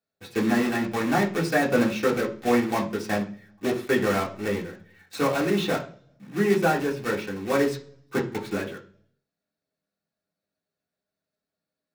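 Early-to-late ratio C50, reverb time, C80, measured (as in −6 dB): 12.5 dB, 0.45 s, 17.0 dB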